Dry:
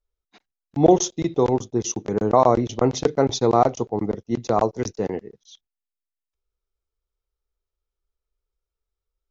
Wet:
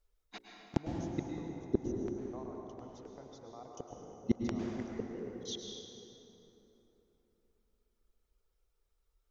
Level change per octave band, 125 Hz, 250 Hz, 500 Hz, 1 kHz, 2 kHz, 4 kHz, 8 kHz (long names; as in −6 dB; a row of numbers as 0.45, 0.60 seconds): −15.5 dB, −14.0 dB, −21.5 dB, −27.0 dB, −14.0 dB, −13.0 dB, can't be measured